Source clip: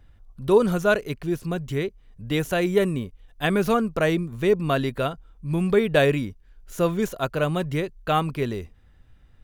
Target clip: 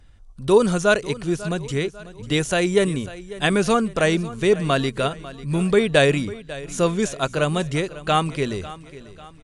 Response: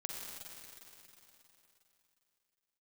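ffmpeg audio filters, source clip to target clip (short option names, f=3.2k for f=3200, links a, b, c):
-af "aresample=22050,aresample=44100,equalizer=f=7.9k:t=o:w=2.2:g=9,bandreject=f=60:t=h:w=6,bandreject=f=120:t=h:w=6,aecho=1:1:546|1092|1638|2184:0.141|0.0636|0.0286|0.0129,volume=2dB"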